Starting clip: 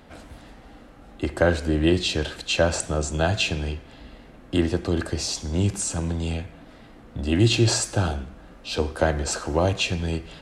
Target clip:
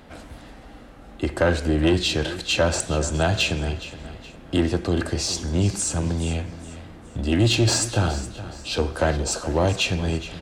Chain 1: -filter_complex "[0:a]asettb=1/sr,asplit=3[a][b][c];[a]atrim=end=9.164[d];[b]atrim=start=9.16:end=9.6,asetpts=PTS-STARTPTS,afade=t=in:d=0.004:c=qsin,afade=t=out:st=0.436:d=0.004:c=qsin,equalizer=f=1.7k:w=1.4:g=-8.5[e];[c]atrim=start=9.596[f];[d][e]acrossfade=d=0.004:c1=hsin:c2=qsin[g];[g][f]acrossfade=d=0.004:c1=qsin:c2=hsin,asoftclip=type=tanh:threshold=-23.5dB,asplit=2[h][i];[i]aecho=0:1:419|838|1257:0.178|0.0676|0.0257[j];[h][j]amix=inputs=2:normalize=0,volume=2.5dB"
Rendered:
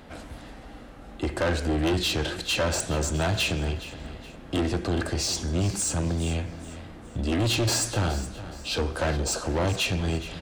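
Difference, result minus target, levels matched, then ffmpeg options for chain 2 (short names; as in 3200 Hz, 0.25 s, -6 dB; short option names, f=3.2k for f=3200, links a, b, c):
soft clip: distortion +9 dB
-filter_complex "[0:a]asettb=1/sr,asplit=3[a][b][c];[a]atrim=end=9.164[d];[b]atrim=start=9.16:end=9.6,asetpts=PTS-STARTPTS,afade=t=in:d=0.004:c=qsin,afade=t=out:st=0.436:d=0.004:c=qsin,equalizer=f=1.7k:w=1.4:g=-8.5[e];[c]atrim=start=9.596[f];[d][e]acrossfade=d=0.004:c1=hsin:c2=qsin[g];[g][f]acrossfade=d=0.004:c1=qsin:c2=hsin,asoftclip=type=tanh:threshold=-13.5dB,asplit=2[h][i];[i]aecho=0:1:419|838|1257:0.178|0.0676|0.0257[j];[h][j]amix=inputs=2:normalize=0,volume=2.5dB"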